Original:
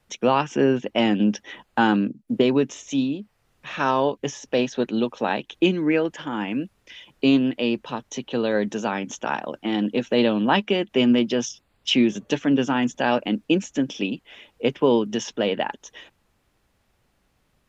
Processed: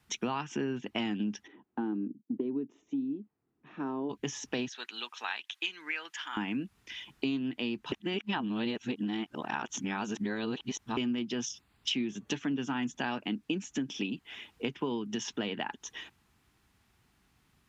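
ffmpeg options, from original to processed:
ffmpeg -i in.wav -filter_complex "[0:a]asplit=3[link_01][link_02][link_03];[link_01]afade=type=out:start_time=1.46:duration=0.02[link_04];[link_02]bandpass=frequency=320:width_type=q:width=2,afade=type=in:start_time=1.46:duration=0.02,afade=type=out:start_time=4.09:duration=0.02[link_05];[link_03]afade=type=in:start_time=4.09:duration=0.02[link_06];[link_04][link_05][link_06]amix=inputs=3:normalize=0,asettb=1/sr,asplit=3[link_07][link_08][link_09];[link_07]atrim=end=4.684[link_10];[link_08]atrim=start=4.68:end=6.37,asetpts=PTS-STARTPTS,afade=type=in:duration=0.004:curve=qsin,afade=type=out:start_time=1.686:duration=0.004:curve=qsin,highpass=1400[link_11];[link_09]atrim=start=6.366[link_12];[link_10][link_11]acrossfade=duration=0.004:curve1=hsin:curve2=qsin[link_13];[link_13][link_12]acrossfade=duration=0.004:curve1=qsin:curve2=hsin,asplit=3[link_14][link_15][link_16];[link_14]atrim=end=7.922[link_17];[link_15]atrim=start=7.918:end=10.972,asetpts=PTS-STARTPTS,areverse[link_18];[link_16]atrim=start=10.968[link_19];[link_17][link_18]acrossfade=duration=0.004:curve1=hsin:curve2=hsin[link_20];[link_20][link_19]acrossfade=duration=0.004:curve1=hsin:curve2=hsin,highpass=51,equalizer=frequency=550:width=2.9:gain=-14.5,acompressor=threshold=-31dB:ratio=5" out.wav

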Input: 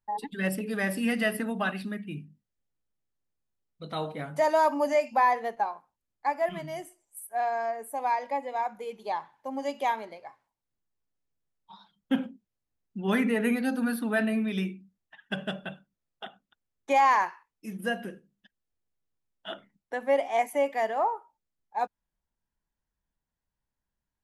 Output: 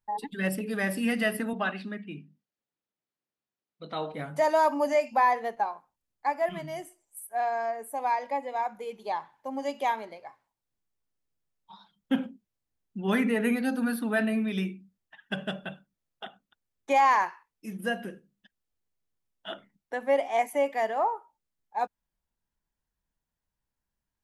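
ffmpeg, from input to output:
ffmpeg -i in.wav -filter_complex "[0:a]asettb=1/sr,asplit=3[link_01][link_02][link_03];[link_01]atrim=end=1.534[link_04];[link_02]atrim=start=1.53:end=4.14,asetpts=PTS-STARTPTS,afade=type=in:duration=0.004:curve=qsin,afade=type=out:start_time=2.606:duration=0.004:curve=qsin,highpass=200,lowpass=4800[link_05];[link_03]atrim=start=4.136[link_06];[link_04][link_05]acrossfade=duration=0.004:curve1=hsin:curve2=qsin[link_07];[link_07][link_06]acrossfade=duration=0.004:curve1=qsin:curve2=hsin" out.wav

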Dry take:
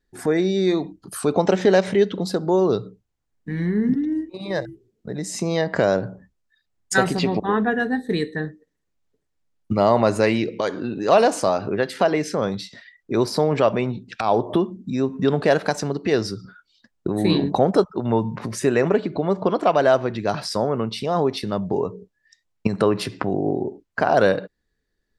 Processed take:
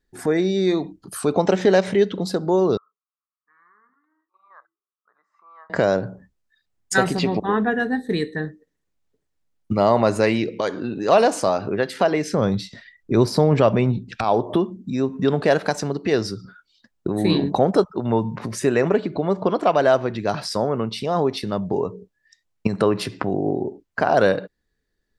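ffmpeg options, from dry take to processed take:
ffmpeg -i in.wav -filter_complex "[0:a]asettb=1/sr,asplit=3[link_01][link_02][link_03];[link_01]atrim=end=2.774[link_04];[link_02]atrim=start=2.77:end=5.7,asetpts=PTS-STARTPTS,afade=type=in:duration=0.004:curve=qsin,afade=type=out:start_time=2.926:duration=0.004:curve=qsin,asuperpass=centerf=1200:order=4:qfactor=4.7[link_05];[link_03]atrim=start=5.696[link_06];[link_04][link_05]acrossfade=duration=0.004:curve1=hsin:curve2=qsin[link_07];[link_07][link_06]acrossfade=duration=0.004:curve1=qsin:curve2=hsin,asettb=1/sr,asplit=3[link_08][link_09][link_10];[link_08]atrim=end=12.334[link_11];[link_09]atrim=start=12.33:end=14.24,asetpts=PTS-STARTPTS,afade=type=in:duration=0.004:curve=qsin,afade=type=out:start_time=1.906:duration=0.004:curve=qsin,lowshelf=frequency=190:gain=11.5[link_12];[link_10]atrim=start=14.236[link_13];[link_11][link_12]acrossfade=duration=0.004:curve1=hsin:curve2=qsin[link_14];[link_14][link_13]acrossfade=duration=0.004:curve1=qsin:curve2=hsin" out.wav

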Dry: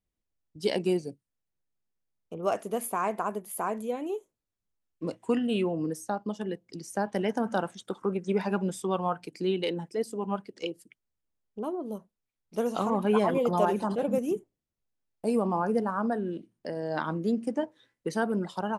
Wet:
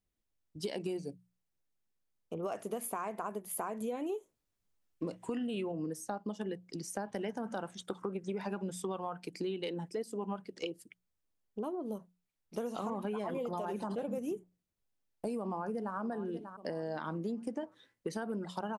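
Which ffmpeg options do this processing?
ffmpeg -i in.wav -filter_complex "[0:a]asplit=2[link_01][link_02];[link_02]afade=type=in:start_time=15.39:duration=0.01,afade=type=out:start_time=15.97:duration=0.01,aecho=0:1:590|1180|1770:0.149624|0.0523682|0.0183289[link_03];[link_01][link_03]amix=inputs=2:normalize=0,asplit=3[link_04][link_05][link_06];[link_04]atrim=end=3.812[link_07];[link_05]atrim=start=3.808:end=5.722,asetpts=PTS-STARTPTS,volume=4dB[link_08];[link_06]atrim=start=5.718[link_09];[link_07][link_08]acrossfade=duration=0.004:curve1=hsin:curve2=hsin[link_10];[link_10][link_09]acrossfade=duration=0.004:curve1=hsin:curve2=hsin,bandreject=frequency=60:width_type=h:width=6,bandreject=frequency=120:width_type=h:width=6,bandreject=frequency=180:width_type=h:width=6,alimiter=limit=-20dB:level=0:latency=1:release=55,acompressor=threshold=-34dB:ratio=6" out.wav

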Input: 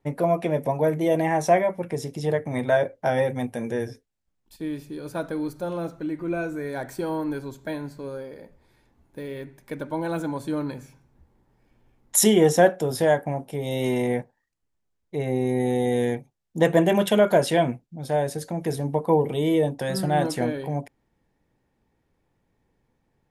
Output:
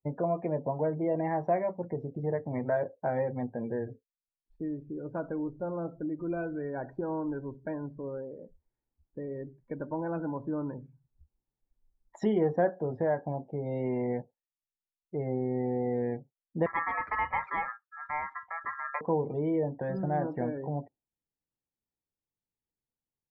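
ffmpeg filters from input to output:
ffmpeg -i in.wav -filter_complex "[0:a]asettb=1/sr,asplit=3[link_01][link_02][link_03];[link_01]atrim=end=16.664[link_04];[link_02]atrim=start=16.66:end=19.01,asetpts=PTS-STARTPTS,afade=type=in:duration=0.004:curve=qsin,afade=type=out:start_time=2.346:duration=0.004:curve=qsin,aeval=exprs='val(0)*sin(2*PI*1500*n/s)':channel_layout=same[link_05];[link_03]atrim=start=19.006[link_06];[link_04][link_05]acrossfade=duration=0.004:curve1=hsin:curve2=qsin[link_07];[link_07][link_06]acrossfade=duration=0.004:curve1=qsin:curve2=hsin,lowpass=1500,afftdn=noise_reduction=26:noise_floor=-42,acompressor=threshold=-34dB:ratio=1.5,volume=-2dB" out.wav

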